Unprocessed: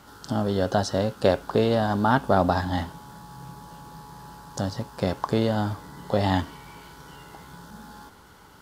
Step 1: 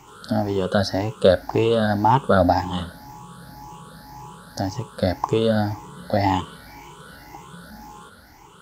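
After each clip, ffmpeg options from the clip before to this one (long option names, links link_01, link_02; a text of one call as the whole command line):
ffmpeg -i in.wav -af "afftfilt=real='re*pow(10,16/40*sin(2*PI*(0.71*log(max(b,1)*sr/1024/100)/log(2)-(1.9)*(pts-256)/sr)))':imag='im*pow(10,16/40*sin(2*PI*(0.71*log(max(b,1)*sr/1024/100)/log(2)-(1.9)*(pts-256)/sr)))':win_size=1024:overlap=0.75" out.wav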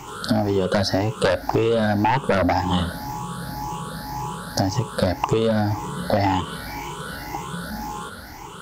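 ffmpeg -i in.wav -af "aeval=exprs='0.891*sin(PI/2*3.16*val(0)/0.891)':channel_layout=same,acompressor=threshold=-13dB:ratio=10,volume=-3.5dB" out.wav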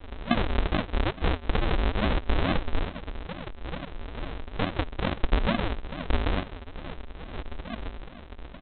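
ffmpeg -i in.wav -af "aresample=8000,acrusher=samples=34:mix=1:aa=0.000001:lfo=1:lforange=34:lforate=2.3,aresample=44100,equalizer=frequency=120:width=1.1:gain=-12.5,volume=-1.5dB" out.wav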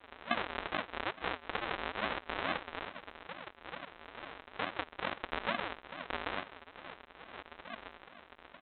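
ffmpeg -i in.wav -af "bandpass=frequency=1600:width_type=q:width=0.66:csg=0,volume=-3dB" out.wav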